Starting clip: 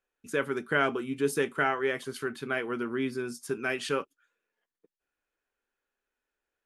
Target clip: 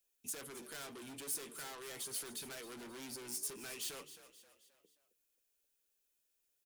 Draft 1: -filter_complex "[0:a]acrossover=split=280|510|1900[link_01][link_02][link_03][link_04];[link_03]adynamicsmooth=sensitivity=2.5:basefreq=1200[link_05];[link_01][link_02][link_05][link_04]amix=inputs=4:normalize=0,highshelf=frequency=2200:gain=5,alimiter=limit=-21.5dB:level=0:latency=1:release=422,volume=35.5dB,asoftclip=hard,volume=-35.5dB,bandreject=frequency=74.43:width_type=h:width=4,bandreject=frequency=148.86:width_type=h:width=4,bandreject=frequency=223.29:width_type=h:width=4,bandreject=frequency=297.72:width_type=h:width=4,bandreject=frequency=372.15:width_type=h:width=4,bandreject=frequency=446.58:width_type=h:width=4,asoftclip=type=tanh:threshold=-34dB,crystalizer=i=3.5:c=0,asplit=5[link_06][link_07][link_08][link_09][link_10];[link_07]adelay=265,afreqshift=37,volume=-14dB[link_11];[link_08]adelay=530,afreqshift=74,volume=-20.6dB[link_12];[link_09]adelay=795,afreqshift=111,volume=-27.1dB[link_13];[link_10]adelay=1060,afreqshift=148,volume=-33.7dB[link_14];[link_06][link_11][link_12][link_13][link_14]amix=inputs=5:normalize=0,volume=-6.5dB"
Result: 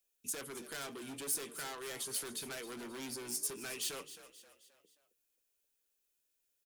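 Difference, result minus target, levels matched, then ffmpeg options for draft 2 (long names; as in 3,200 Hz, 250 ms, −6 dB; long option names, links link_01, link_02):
soft clipping: distortion −11 dB
-filter_complex "[0:a]acrossover=split=280|510|1900[link_01][link_02][link_03][link_04];[link_03]adynamicsmooth=sensitivity=2.5:basefreq=1200[link_05];[link_01][link_02][link_05][link_04]amix=inputs=4:normalize=0,highshelf=frequency=2200:gain=5,alimiter=limit=-21.5dB:level=0:latency=1:release=422,volume=35.5dB,asoftclip=hard,volume=-35.5dB,bandreject=frequency=74.43:width_type=h:width=4,bandreject=frequency=148.86:width_type=h:width=4,bandreject=frequency=223.29:width_type=h:width=4,bandreject=frequency=297.72:width_type=h:width=4,bandreject=frequency=372.15:width_type=h:width=4,bandreject=frequency=446.58:width_type=h:width=4,asoftclip=type=tanh:threshold=-42.5dB,crystalizer=i=3.5:c=0,asplit=5[link_06][link_07][link_08][link_09][link_10];[link_07]adelay=265,afreqshift=37,volume=-14dB[link_11];[link_08]adelay=530,afreqshift=74,volume=-20.6dB[link_12];[link_09]adelay=795,afreqshift=111,volume=-27.1dB[link_13];[link_10]adelay=1060,afreqshift=148,volume=-33.7dB[link_14];[link_06][link_11][link_12][link_13][link_14]amix=inputs=5:normalize=0,volume=-6.5dB"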